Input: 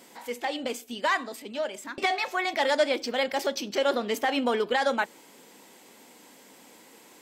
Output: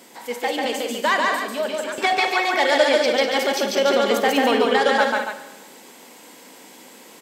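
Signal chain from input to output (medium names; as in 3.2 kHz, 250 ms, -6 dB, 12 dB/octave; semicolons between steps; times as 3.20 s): high-pass 130 Hz 12 dB/octave; loudspeakers at several distances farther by 49 m -2 dB, 68 m -8 dB, 98 m -8 dB; Schroeder reverb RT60 1.1 s, combs from 32 ms, DRR 10.5 dB; trim +5 dB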